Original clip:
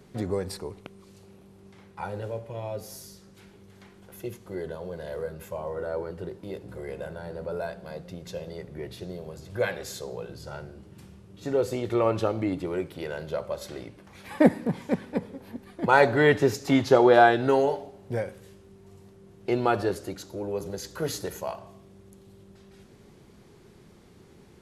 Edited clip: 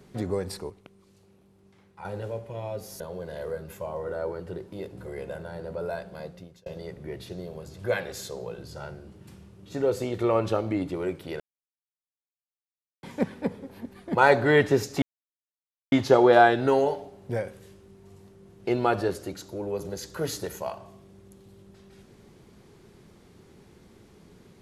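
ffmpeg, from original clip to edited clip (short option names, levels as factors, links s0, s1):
-filter_complex "[0:a]asplit=8[s0][s1][s2][s3][s4][s5][s6][s7];[s0]atrim=end=0.702[s8];[s1]atrim=start=0.698:end=2.052,asetpts=PTS-STARTPTS,volume=0.422[s9];[s2]atrim=start=2.048:end=3.002[s10];[s3]atrim=start=4.708:end=8.37,asetpts=PTS-STARTPTS,afade=t=out:st=3.232:d=0.43[s11];[s4]atrim=start=8.37:end=13.11,asetpts=PTS-STARTPTS,afade=t=in:d=0.004:c=hsin,afade=t=out:st=4.736:d=0.004:c=hsin[s12];[s5]atrim=start=13.11:end=14.74,asetpts=PTS-STARTPTS,volume=0[s13];[s6]atrim=start=14.74:end=16.73,asetpts=PTS-STARTPTS,afade=t=in:d=0.004:c=hsin,afade=t=out:st=1.986:d=0.004:c=hsin,apad=pad_dur=0.9[s14];[s7]atrim=start=16.73,asetpts=PTS-STARTPTS,afade=t=in:d=0.004:c=hsin[s15];[s8][s9]acrossfade=d=0.004:c1=hsin:c2=hsin[s16];[s16][s10]acrossfade=d=0.004:c1=hsin:c2=hsin[s17];[s11][s12][s13][s14][s15]concat=n=5:v=0:a=1[s18];[s17][s18]acrossfade=d=0.004:c1=hsin:c2=hsin"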